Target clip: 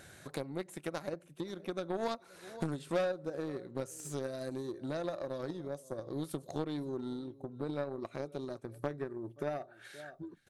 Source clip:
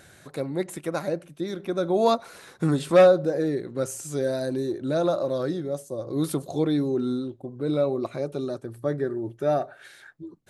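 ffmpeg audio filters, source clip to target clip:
ffmpeg -i in.wav -af "aecho=1:1:522:0.0668,acompressor=threshold=-41dB:ratio=3,aeval=exprs='0.0422*(cos(1*acos(clip(val(0)/0.0422,-1,1)))-cos(1*PI/2))+0.00841*(cos(3*acos(clip(val(0)/0.0422,-1,1)))-cos(3*PI/2))':channel_layout=same,volume=5dB" out.wav

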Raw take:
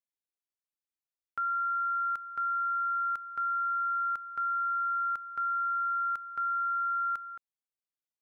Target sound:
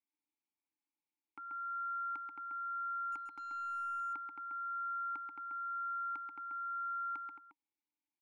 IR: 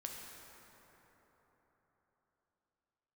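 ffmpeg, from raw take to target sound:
-filter_complex "[0:a]asplit=3[link_01][link_02][link_03];[link_01]bandpass=frequency=300:width_type=q:width=8,volume=0dB[link_04];[link_02]bandpass=frequency=870:width_type=q:width=8,volume=-6dB[link_05];[link_03]bandpass=frequency=2240:width_type=q:width=8,volume=-9dB[link_06];[link_04][link_05][link_06]amix=inputs=3:normalize=0,alimiter=level_in=28.5dB:limit=-24dB:level=0:latency=1:release=404,volume=-28.5dB,asettb=1/sr,asplit=3[link_07][link_08][link_09];[link_07]atrim=end=3.124[link_10];[link_08]atrim=start=3.12:end=4,asetpts=PTS-STARTPTS,afade=type=in:duration=0.004:curve=qsin,afade=type=out:start_time=0.876:duration=0.004:curve=qsin,aeval=exprs='0.00251*(cos(1*acos(clip(val(0)/0.00251,-1,1)))-cos(1*PI/2))+0.0000501*(cos(3*acos(clip(val(0)/0.00251,-1,1)))-cos(3*PI/2))+0.0000708*(cos(4*acos(clip(val(0)/0.00251,-1,1)))-cos(4*PI/2))+0.0000316*(cos(6*acos(clip(val(0)/0.00251,-1,1)))-cos(6*PI/2))+0.0001*(cos(7*acos(clip(val(0)/0.00251,-1,1)))-cos(7*PI/2))':channel_layout=same[link_11];[link_09]atrim=start=3.996[link_12];[link_10][link_11]acrossfade=duration=0.004:curve1=hsin:curve2=qsin[link_13];[link_13][link_12]acrossfade=duration=0.004:curve1=qsin:curve2=hsin,bandreject=frequency=940:width=30,asplit=2[link_14][link_15];[link_15]aecho=0:1:134:0.596[link_16];[link_14][link_16]amix=inputs=2:normalize=0,volume=13.5dB"

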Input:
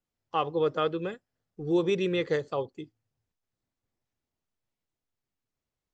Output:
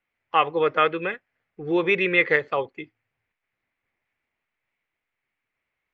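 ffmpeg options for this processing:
ffmpeg -i in.wav -af "lowpass=frequency=2200:width_type=q:width=4,lowshelf=frequency=390:gain=-11.5,volume=8.5dB" out.wav

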